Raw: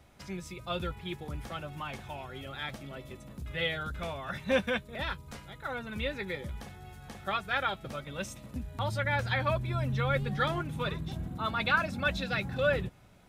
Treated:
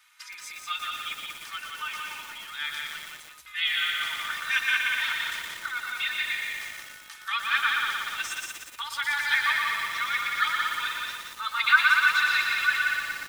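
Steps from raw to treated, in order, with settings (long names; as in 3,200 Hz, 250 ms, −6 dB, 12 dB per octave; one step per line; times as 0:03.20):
inverse Chebyshev high-pass filter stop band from 620 Hz, stop band 40 dB
comb filter 3.3 ms, depth 70%
on a send: repeating echo 179 ms, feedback 29%, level −4 dB
on the sum: feedback echo at a low word length 119 ms, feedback 80%, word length 8 bits, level −4 dB
level +5.5 dB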